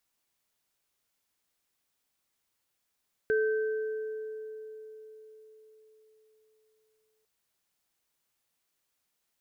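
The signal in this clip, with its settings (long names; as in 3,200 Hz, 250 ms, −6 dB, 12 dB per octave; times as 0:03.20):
inharmonic partials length 3.95 s, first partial 435 Hz, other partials 1,550 Hz, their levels −7 dB, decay 4.57 s, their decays 2.18 s, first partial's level −23 dB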